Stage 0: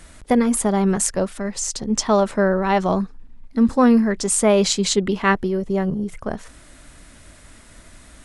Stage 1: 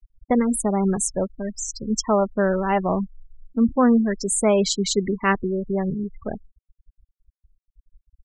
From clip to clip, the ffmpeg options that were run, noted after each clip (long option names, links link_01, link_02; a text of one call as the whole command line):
ffmpeg -i in.wav -af "afftfilt=real='re*gte(hypot(re,im),0.0891)':imag='im*gte(hypot(re,im),0.0891)':win_size=1024:overlap=0.75,volume=-2.5dB" out.wav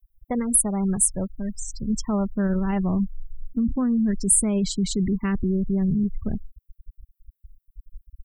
ffmpeg -i in.wav -af "asubboost=boost=9.5:cutoff=210,alimiter=limit=-10.5dB:level=0:latency=1:release=14,aexciter=amount=13.8:drive=4.2:freq=9400,volume=-6.5dB" out.wav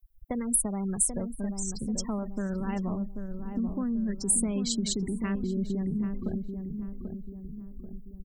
ffmpeg -i in.wav -filter_complex "[0:a]acrossover=split=230|3300[link_01][link_02][link_03];[link_01]acompressor=threshold=-36dB:ratio=4[link_04];[link_02]acompressor=threshold=-34dB:ratio=4[link_05];[link_03]acompressor=threshold=-23dB:ratio=4[link_06];[link_04][link_05][link_06]amix=inputs=3:normalize=0,asplit=2[link_07][link_08];[link_08]adelay=787,lowpass=frequency=810:poles=1,volume=-6dB,asplit=2[link_09][link_10];[link_10]adelay=787,lowpass=frequency=810:poles=1,volume=0.51,asplit=2[link_11][link_12];[link_12]adelay=787,lowpass=frequency=810:poles=1,volume=0.51,asplit=2[link_13][link_14];[link_14]adelay=787,lowpass=frequency=810:poles=1,volume=0.51,asplit=2[link_15][link_16];[link_16]adelay=787,lowpass=frequency=810:poles=1,volume=0.51,asplit=2[link_17][link_18];[link_18]adelay=787,lowpass=frequency=810:poles=1,volume=0.51[link_19];[link_09][link_11][link_13][link_15][link_17][link_19]amix=inputs=6:normalize=0[link_20];[link_07][link_20]amix=inputs=2:normalize=0" out.wav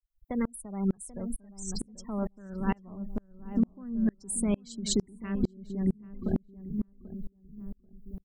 ffmpeg -i in.wav -af "aeval=exprs='val(0)*pow(10,-37*if(lt(mod(-2.2*n/s,1),2*abs(-2.2)/1000),1-mod(-2.2*n/s,1)/(2*abs(-2.2)/1000),(mod(-2.2*n/s,1)-2*abs(-2.2)/1000)/(1-2*abs(-2.2)/1000))/20)':channel_layout=same,volume=8dB" out.wav